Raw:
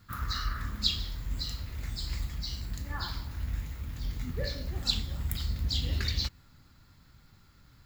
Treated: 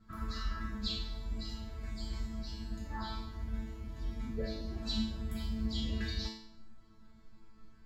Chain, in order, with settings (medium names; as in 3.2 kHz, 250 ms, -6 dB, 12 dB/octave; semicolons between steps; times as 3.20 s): low-pass 10 kHz 12 dB/octave; tilt shelf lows +7.5 dB, about 1.2 kHz; chord resonator A3 fifth, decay 0.6 s; trim +16.5 dB